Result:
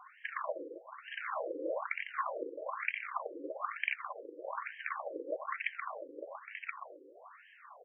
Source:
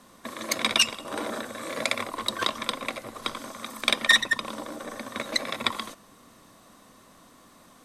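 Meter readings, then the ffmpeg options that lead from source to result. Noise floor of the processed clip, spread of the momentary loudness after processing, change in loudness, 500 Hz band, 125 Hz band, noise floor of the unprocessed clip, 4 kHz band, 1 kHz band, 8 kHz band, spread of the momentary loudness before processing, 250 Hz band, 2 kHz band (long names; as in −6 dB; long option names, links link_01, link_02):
−59 dBFS, 13 LU, −12.5 dB, −4.0 dB, below −40 dB, −55 dBFS, −27.0 dB, −6.0 dB, below −40 dB, 17 LU, −12.5 dB, −11.5 dB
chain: -af "acompressor=threshold=-33dB:ratio=6,aecho=1:1:1027:0.531,afftfilt=real='re*between(b*sr/1024,370*pow(2300/370,0.5+0.5*sin(2*PI*1.1*pts/sr))/1.41,370*pow(2300/370,0.5+0.5*sin(2*PI*1.1*pts/sr))*1.41)':imag='im*between(b*sr/1024,370*pow(2300/370,0.5+0.5*sin(2*PI*1.1*pts/sr))/1.41,370*pow(2300/370,0.5+0.5*sin(2*PI*1.1*pts/sr))*1.41)':win_size=1024:overlap=0.75,volume=5.5dB"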